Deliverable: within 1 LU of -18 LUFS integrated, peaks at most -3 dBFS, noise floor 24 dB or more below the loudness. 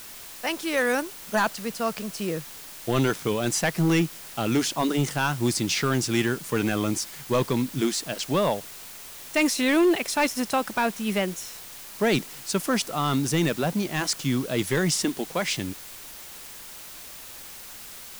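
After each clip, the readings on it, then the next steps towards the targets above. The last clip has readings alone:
clipped samples 0.7%; clipping level -15.5 dBFS; noise floor -42 dBFS; noise floor target -50 dBFS; loudness -25.5 LUFS; peak level -15.5 dBFS; loudness target -18.0 LUFS
-> clip repair -15.5 dBFS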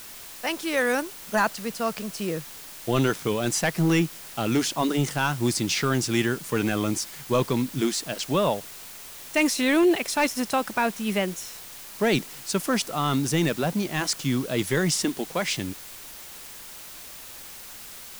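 clipped samples 0.0%; noise floor -42 dBFS; noise floor target -50 dBFS
-> noise reduction 8 dB, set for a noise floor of -42 dBFS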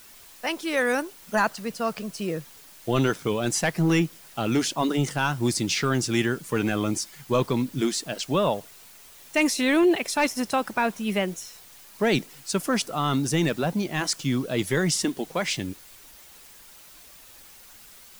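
noise floor -49 dBFS; noise floor target -50 dBFS
-> noise reduction 6 dB, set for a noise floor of -49 dBFS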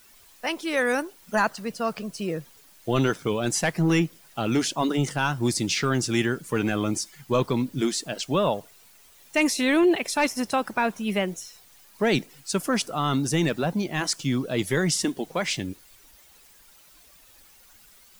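noise floor -54 dBFS; loudness -25.5 LUFS; peak level -9.5 dBFS; loudness target -18.0 LUFS
-> trim +7.5 dB; peak limiter -3 dBFS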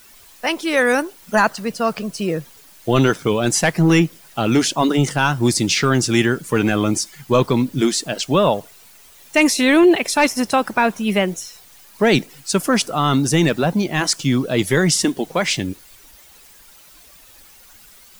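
loudness -18.0 LUFS; peak level -3.0 dBFS; noise floor -47 dBFS

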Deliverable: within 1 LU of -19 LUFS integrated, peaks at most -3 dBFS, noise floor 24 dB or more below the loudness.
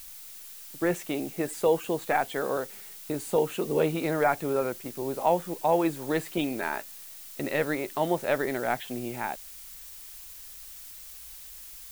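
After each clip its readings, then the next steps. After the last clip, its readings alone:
noise floor -45 dBFS; noise floor target -53 dBFS; loudness -29.0 LUFS; peak level -11.5 dBFS; loudness target -19.0 LUFS
-> noise reduction 8 dB, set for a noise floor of -45 dBFS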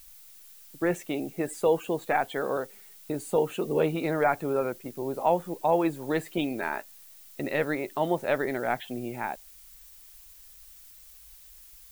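noise floor -51 dBFS; noise floor target -53 dBFS
-> noise reduction 6 dB, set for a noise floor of -51 dBFS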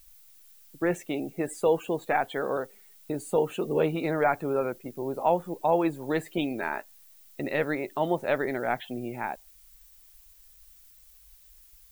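noise floor -56 dBFS; loudness -29.0 LUFS; peak level -11.5 dBFS; loudness target -19.0 LUFS
-> trim +10 dB; peak limiter -3 dBFS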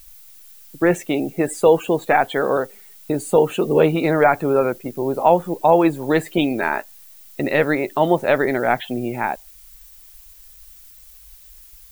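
loudness -19.0 LUFS; peak level -3.0 dBFS; noise floor -46 dBFS

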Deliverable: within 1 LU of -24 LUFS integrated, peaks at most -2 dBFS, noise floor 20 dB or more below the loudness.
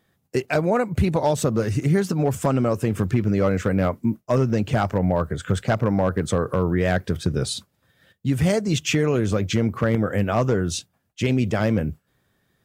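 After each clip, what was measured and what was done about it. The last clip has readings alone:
clipped samples 0.4%; clipping level -11.0 dBFS; loudness -22.5 LUFS; peak level -11.0 dBFS; loudness target -24.0 LUFS
-> clip repair -11 dBFS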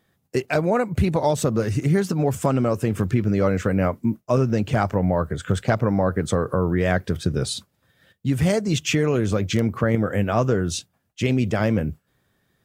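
clipped samples 0.0%; loudness -22.5 LUFS; peak level -4.5 dBFS; loudness target -24.0 LUFS
-> trim -1.5 dB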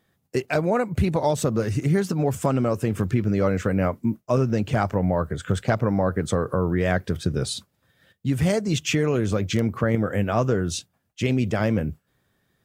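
loudness -24.0 LUFS; peak level -6.0 dBFS; noise floor -72 dBFS

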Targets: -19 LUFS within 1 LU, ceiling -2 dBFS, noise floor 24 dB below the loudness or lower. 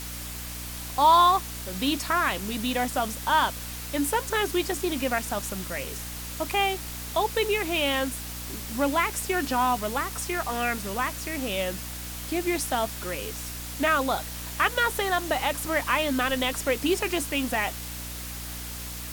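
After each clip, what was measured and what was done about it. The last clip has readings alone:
hum 60 Hz; highest harmonic 300 Hz; hum level -37 dBFS; noise floor -36 dBFS; noise floor target -51 dBFS; loudness -26.5 LUFS; peak level -8.5 dBFS; loudness target -19.0 LUFS
-> hum notches 60/120/180/240/300 Hz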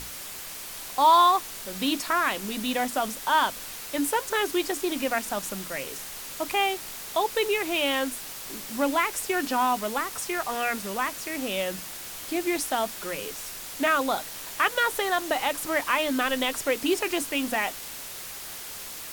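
hum not found; noise floor -39 dBFS; noise floor target -51 dBFS
-> noise print and reduce 12 dB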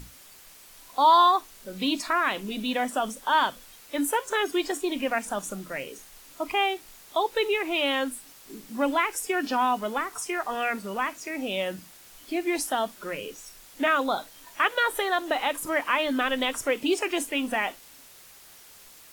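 noise floor -51 dBFS; loudness -26.5 LUFS; peak level -8.5 dBFS; loudness target -19.0 LUFS
-> trim +7.5 dB; peak limiter -2 dBFS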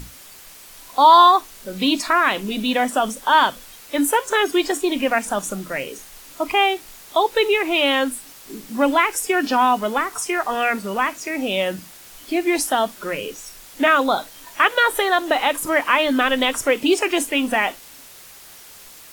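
loudness -19.0 LUFS; peak level -2.0 dBFS; noise floor -43 dBFS

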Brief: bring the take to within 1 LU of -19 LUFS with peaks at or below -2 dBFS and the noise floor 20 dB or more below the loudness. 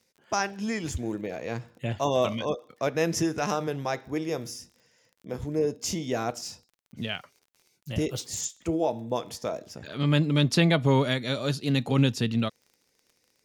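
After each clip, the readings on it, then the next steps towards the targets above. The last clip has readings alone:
tick rate 28 per s; loudness -28.0 LUFS; peak level -9.5 dBFS; loudness target -19.0 LUFS
-> de-click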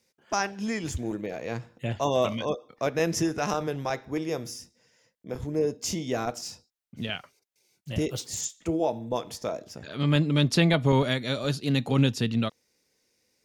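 tick rate 0.45 per s; loudness -28.0 LUFS; peak level -9.5 dBFS; loudness target -19.0 LUFS
-> trim +9 dB; peak limiter -2 dBFS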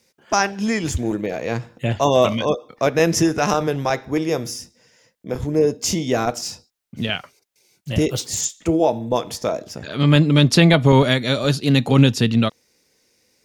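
loudness -19.5 LUFS; peak level -2.0 dBFS; noise floor -66 dBFS

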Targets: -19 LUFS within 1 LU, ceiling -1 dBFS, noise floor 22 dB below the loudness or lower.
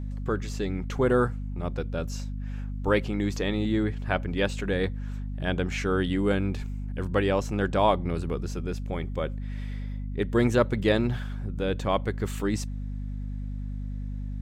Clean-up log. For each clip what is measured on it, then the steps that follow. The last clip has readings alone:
hum 50 Hz; highest harmonic 250 Hz; hum level -30 dBFS; loudness -28.5 LUFS; peak level -9.0 dBFS; loudness target -19.0 LUFS
-> hum notches 50/100/150/200/250 Hz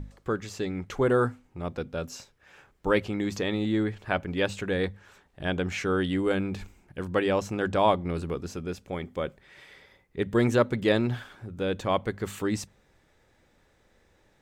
hum not found; loudness -28.5 LUFS; peak level -8.5 dBFS; loudness target -19.0 LUFS
-> trim +9.5 dB; peak limiter -1 dBFS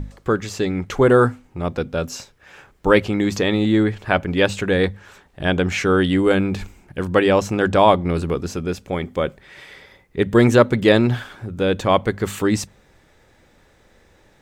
loudness -19.0 LUFS; peak level -1.0 dBFS; noise floor -56 dBFS

